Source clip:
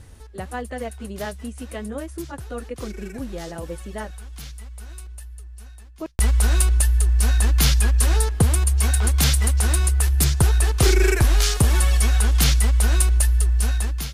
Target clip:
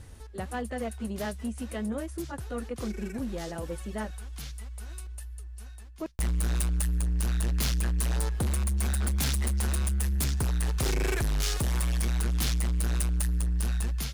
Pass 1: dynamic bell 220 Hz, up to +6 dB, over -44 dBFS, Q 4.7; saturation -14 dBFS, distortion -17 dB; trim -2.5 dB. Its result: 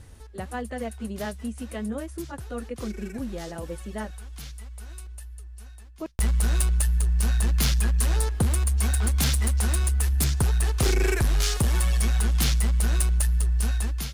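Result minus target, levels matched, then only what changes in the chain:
saturation: distortion -8 dB
change: saturation -22 dBFS, distortion -9 dB

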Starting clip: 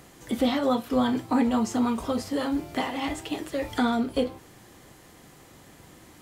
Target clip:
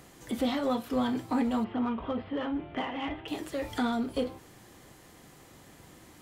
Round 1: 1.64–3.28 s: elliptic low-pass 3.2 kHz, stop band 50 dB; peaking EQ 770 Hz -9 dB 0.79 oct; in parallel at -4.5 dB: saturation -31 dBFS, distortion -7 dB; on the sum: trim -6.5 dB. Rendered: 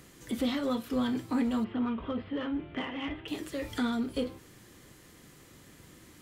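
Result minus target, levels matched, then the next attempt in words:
1 kHz band -4.5 dB
1.64–3.28 s: elliptic low-pass 3.2 kHz, stop band 50 dB; in parallel at -4.5 dB: saturation -31 dBFS, distortion -6 dB; on the sum: trim -6.5 dB

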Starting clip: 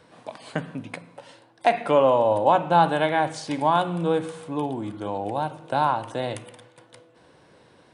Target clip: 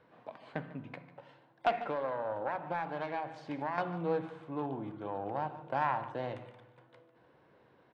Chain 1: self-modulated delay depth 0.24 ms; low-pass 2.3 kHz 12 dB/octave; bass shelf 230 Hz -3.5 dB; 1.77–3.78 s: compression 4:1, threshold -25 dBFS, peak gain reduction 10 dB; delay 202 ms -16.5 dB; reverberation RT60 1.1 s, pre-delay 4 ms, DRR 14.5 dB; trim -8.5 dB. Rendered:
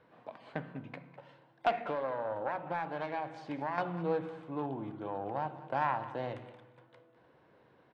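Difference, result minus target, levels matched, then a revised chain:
echo 55 ms late
self-modulated delay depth 0.24 ms; low-pass 2.3 kHz 12 dB/octave; bass shelf 230 Hz -3.5 dB; 1.77–3.78 s: compression 4:1, threshold -25 dBFS, peak gain reduction 10 dB; delay 147 ms -16.5 dB; reverberation RT60 1.1 s, pre-delay 4 ms, DRR 14.5 dB; trim -8.5 dB

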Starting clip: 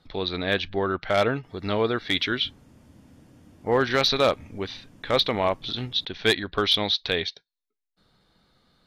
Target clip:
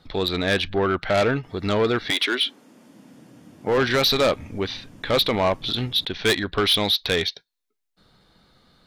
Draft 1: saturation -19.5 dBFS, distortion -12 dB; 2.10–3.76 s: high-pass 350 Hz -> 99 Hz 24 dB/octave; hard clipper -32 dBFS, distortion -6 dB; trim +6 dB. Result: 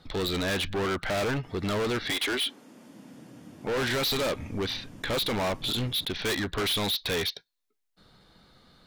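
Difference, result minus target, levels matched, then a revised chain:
hard clipper: distortion +20 dB
saturation -19.5 dBFS, distortion -12 dB; 2.10–3.76 s: high-pass 350 Hz -> 99 Hz 24 dB/octave; hard clipper -20.5 dBFS, distortion -26 dB; trim +6 dB

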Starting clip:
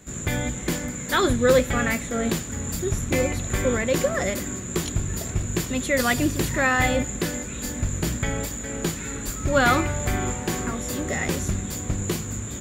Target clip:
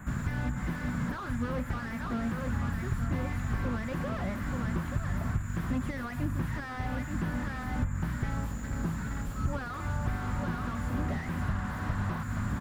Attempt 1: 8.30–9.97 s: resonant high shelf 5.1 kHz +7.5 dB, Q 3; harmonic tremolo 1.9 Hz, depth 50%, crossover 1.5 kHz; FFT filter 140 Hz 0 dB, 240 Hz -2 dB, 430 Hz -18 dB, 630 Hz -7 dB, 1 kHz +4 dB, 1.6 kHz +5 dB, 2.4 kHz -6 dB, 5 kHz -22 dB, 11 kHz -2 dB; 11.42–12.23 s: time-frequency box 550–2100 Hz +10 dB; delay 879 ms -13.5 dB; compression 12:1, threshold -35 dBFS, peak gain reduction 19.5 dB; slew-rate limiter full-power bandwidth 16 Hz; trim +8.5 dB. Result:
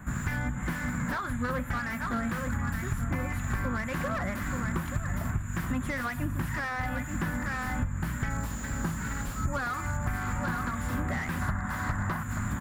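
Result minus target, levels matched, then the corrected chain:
slew-rate limiter: distortion -5 dB
8.30–9.97 s: resonant high shelf 5.1 kHz +7.5 dB, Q 3; harmonic tremolo 1.9 Hz, depth 50%, crossover 1.5 kHz; FFT filter 140 Hz 0 dB, 240 Hz -2 dB, 430 Hz -18 dB, 630 Hz -7 dB, 1 kHz +4 dB, 1.6 kHz +5 dB, 2.4 kHz -6 dB, 5 kHz -22 dB, 11 kHz -2 dB; 11.42–12.23 s: time-frequency box 550–2100 Hz +10 dB; delay 879 ms -13.5 dB; compression 12:1, threshold -35 dBFS, peak gain reduction 19.5 dB; slew-rate limiter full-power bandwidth 6 Hz; trim +8.5 dB

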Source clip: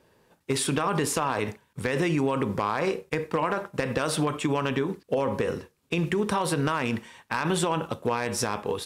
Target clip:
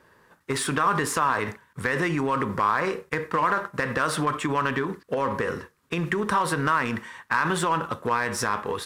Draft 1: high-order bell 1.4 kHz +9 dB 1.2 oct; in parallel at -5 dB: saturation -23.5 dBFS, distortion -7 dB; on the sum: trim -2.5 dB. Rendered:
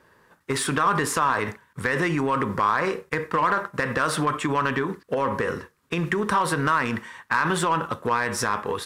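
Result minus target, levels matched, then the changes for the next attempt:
saturation: distortion -5 dB
change: saturation -33.5 dBFS, distortion -3 dB

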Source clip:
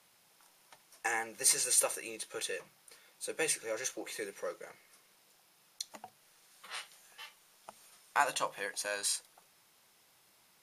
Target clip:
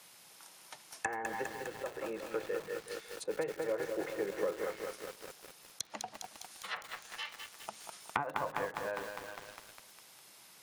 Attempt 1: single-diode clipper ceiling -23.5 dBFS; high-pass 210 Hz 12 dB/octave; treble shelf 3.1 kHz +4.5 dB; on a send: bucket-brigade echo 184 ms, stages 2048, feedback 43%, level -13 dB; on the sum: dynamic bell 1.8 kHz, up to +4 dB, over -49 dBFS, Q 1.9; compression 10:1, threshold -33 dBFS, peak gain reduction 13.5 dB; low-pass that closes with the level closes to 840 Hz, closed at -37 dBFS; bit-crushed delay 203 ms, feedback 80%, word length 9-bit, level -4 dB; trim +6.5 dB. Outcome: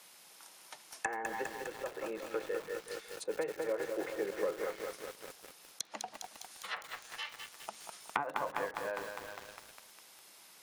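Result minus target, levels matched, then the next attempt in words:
125 Hz band -5.0 dB
single-diode clipper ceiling -23.5 dBFS; high-pass 100 Hz 12 dB/octave; treble shelf 3.1 kHz +4.5 dB; on a send: bucket-brigade echo 184 ms, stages 2048, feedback 43%, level -13 dB; on the sum: dynamic bell 1.8 kHz, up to +4 dB, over -49 dBFS, Q 1.9; compression 10:1, threshold -33 dBFS, peak gain reduction 13.5 dB; low-pass that closes with the level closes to 840 Hz, closed at -37 dBFS; bit-crushed delay 203 ms, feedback 80%, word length 9-bit, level -4 dB; trim +6.5 dB

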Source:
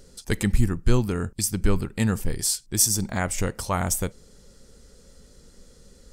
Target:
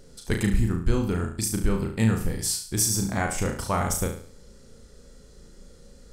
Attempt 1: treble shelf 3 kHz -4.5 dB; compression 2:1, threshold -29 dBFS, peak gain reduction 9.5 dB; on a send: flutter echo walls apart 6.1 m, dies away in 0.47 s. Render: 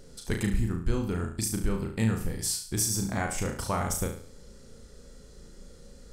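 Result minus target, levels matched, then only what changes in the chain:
compression: peak gain reduction +5 dB
change: compression 2:1, threshold -19.5 dBFS, peak gain reduction 5 dB

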